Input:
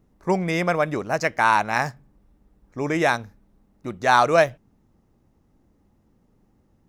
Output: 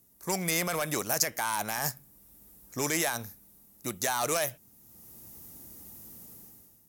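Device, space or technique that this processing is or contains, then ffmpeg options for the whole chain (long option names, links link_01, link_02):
FM broadcast chain: -filter_complex "[0:a]highpass=61,dynaudnorm=framelen=150:gausssize=7:maxgain=15dB,acrossover=split=640|1700[link_01][link_02][link_03];[link_01]acompressor=threshold=-22dB:ratio=4[link_04];[link_02]acompressor=threshold=-17dB:ratio=4[link_05];[link_03]acompressor=threshold=-29dB:ratio=4[link_06];[link_04][link_05][link_06]amix=inputs=3:normalize=0,aemphasis=mode=production:type=75fm,alimiter=limit=-13.5dB:level=0:latency=1:release=10,asoftclip=type=hard:threshold=-17.5dB,lowpass=frequency=15000:width=0.5412,lowpass=frequency=15000:width=1.3066,aemphasis=mode=production:type=75fm,volume=-7dB"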